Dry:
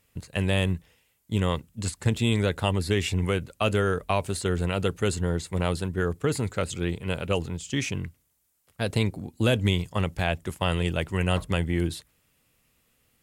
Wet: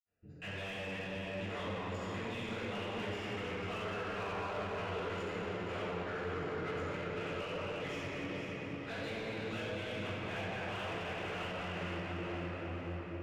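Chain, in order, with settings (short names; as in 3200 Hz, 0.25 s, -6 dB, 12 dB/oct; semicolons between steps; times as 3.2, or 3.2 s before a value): Wiener smoothing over 41 samples; rippled Chebyshev low-pass 7200 Hz, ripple 6 dB; high shelf 4800 Hz +11.5 dB; reverb RT60 4.3 s, pre-delay 62 ms; compressor, threshold -42 dBFS, peak gain reduction 9 dB; overdrive pedal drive 24 dB, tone 1400 Hz, clips at -32 dBFS; echo with dull and thin repeats by turns 0.245 s, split 960 Hz, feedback 71%, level -4.5 dB; gain +1 dB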